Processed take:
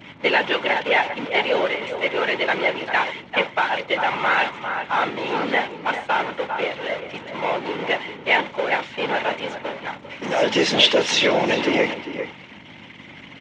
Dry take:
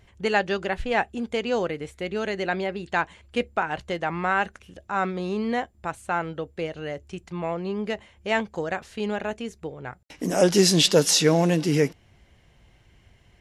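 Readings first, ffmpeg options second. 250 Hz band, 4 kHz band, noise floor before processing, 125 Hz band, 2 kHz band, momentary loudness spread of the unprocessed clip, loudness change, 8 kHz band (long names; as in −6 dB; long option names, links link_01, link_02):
−2.0 dB, +6.0 dB, −58 dBFS, −8.5 dB, +8.5 dB, 15 LU, +3.5 dB, −7.5 dB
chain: -filter_complex "[0:a]aeval=exprs='val(0)+0.5*0.0562*sgn(val(0))':channel_layout=same,agate=range=-33dB:threshold=-20dB:ratio=3:detection=peak,equalizer=frequency=2800:width=1.7:gain=5.5,aeval=exprs='val(0)+0.0141*(sin(2*PI*50*n/s)+sin(2*PI*2*50*n/s)/2+sin(2*PI*3*50*n/s)/3+sin(2*PI*4*50*n/s)/4+sin(2*PI*5*50*n/s)/5)':channel_layout=same,afftfilt=real='hypot(re,im)*cos(2*PI*random(0))':imag='hypot(re,im)*sin(2*PI*random(1))':win_size=512:overlap=0.75,asplit=2[link_01][link_02];[link_02]acompressor=threshold=-37dB:ratio=6,volume=2dB[link_03];[link_01][link_03]amix=inputs=2:normalize=0,highpass=290,equalizer=frequency=560:width_type=q:width=4:gain=5,equalizer=frequency=910:width_type=q:width=4:gain=10,equalizer=frequency=1400:width_type=q:width=4:gain=4,equalizer=frequency=2100:width_type=q:width=4:gain=9,equalizer=frequency=3300:width_type=q:width=4:gain=4,equalizer=frequency=4800:width_type=q:width=4:gain=-7,lowpass=frequency=5200:width=0.5412,lowpass=frequency=5200:width=1.3066,asplit=2[link_04][link_05];[link_05]adelay=396.5,volume=-10dB,highshelf=frequency=4000:gain=-8.92[link_06];[link_04][link_06]amix=inputs=2:normalize=0,acrossover=split=380|1900[link_07][link_08][link_09];[link_08]alimiter=limit=-17.5dB:level=0:latency=1:release=84[link_10];[link_07][link_10][link_09]amix=inputs=3:normalize=0,volume=4dB"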